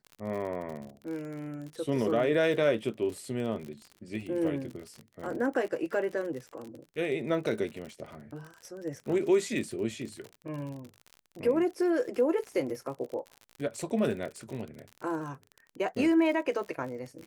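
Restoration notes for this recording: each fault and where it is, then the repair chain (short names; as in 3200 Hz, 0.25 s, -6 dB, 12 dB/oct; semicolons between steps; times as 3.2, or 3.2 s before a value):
crackle 51/s -37 dBFS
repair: de-click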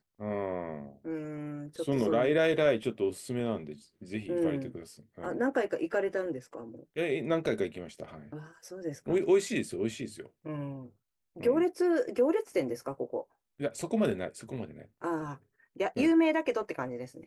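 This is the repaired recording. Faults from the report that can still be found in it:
none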